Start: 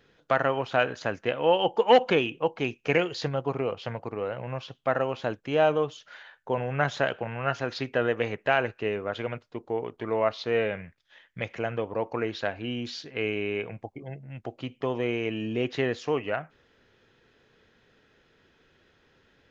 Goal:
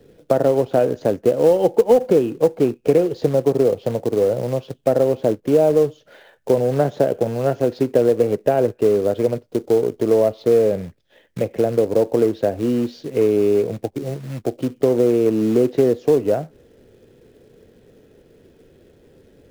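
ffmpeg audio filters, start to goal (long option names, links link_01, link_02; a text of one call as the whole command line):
ffmpeg -i in.wav -filter_complex "[0:a]lowshelf=frequency=750:width_type=q:width=1.5:gain=13.5,acrusher=bits=4:mode=log:mix=0:aa=0.000001,acrossover=split=180|1400[link_01][link_02][link_03];[link_01]acompressor=threshold=-32dB:ratio=4[link_04];[link_02]acompressor=threshold=-12dB:ratio=4[link_05];[link_03]acompressor=threshold=-41dB:ratio=4[link_06];[link_04][link_05][link_06]amix=inputs=3:normalize=0" out.wav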